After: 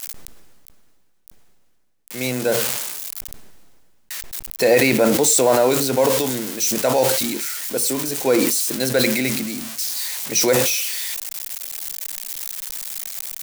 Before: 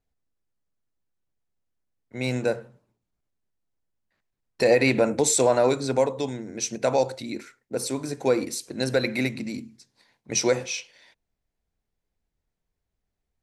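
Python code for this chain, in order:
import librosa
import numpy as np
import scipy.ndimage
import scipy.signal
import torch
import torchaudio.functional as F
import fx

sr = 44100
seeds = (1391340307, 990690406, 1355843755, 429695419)

y = x + 0.5 * 10.0 ** (-21.0 / 20.0) * np.diff(np.sign(x), prepend=np.sign(x[:1]))
y = fx.peak_eq(y, sr, hz=81.0, db=-11.0, octaves=1.2)
y = fx.sustainer(y, sr, db_per_s=30.0)
y = F.gain(torch.from_numpy(y), 3.5).numpy()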